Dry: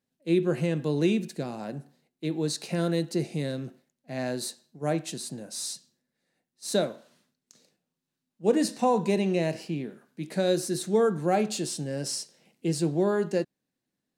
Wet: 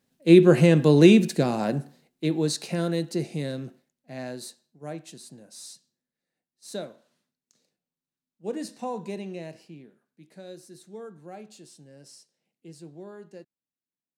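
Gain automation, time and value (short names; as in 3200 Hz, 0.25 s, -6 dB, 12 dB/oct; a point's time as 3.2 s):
1.7 s +10 dB
2.85 s 0 dB
3.62 s 0 dB
4.86 s -9 dB
9.08 s -9 dB
10.39 s -18 dB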